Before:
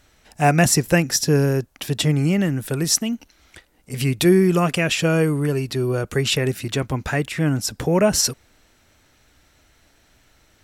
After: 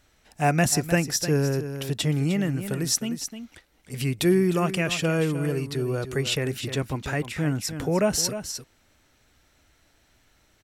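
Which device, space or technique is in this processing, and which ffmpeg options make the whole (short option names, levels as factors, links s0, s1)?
ducked delay: -filter_complex "[0:a]asplit=3[s0][s1][s2];[s1]adelay=305,volume=0.355[s3];[s2]apad=whole_len=482336[s4];[s3][s4]sidechaincompress=threshold=0.112:ratio=8:attack=49:release=463[s5];[s0][s5]amix=inputs=2:normalize=0,volume=0.531"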